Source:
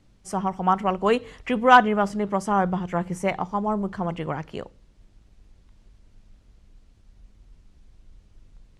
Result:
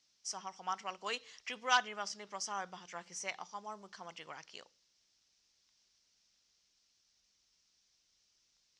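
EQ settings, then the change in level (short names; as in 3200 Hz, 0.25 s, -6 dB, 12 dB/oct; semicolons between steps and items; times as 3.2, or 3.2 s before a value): band-pass 5600 Hz, Q 3.8; air absorption 64 m; +10.0 dB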